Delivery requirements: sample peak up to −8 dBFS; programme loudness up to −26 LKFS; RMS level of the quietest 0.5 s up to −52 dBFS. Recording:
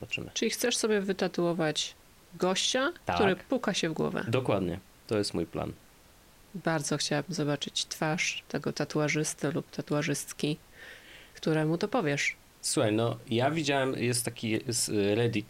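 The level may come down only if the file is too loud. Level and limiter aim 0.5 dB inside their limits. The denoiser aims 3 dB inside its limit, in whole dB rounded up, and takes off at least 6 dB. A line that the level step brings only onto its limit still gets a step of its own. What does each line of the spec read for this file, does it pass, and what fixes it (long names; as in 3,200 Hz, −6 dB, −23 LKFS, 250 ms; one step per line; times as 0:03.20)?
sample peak −12.5 dBFS: in spec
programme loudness −30.0 LKFS: in spec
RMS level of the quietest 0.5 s −58 dBFS: in spec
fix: no processing needed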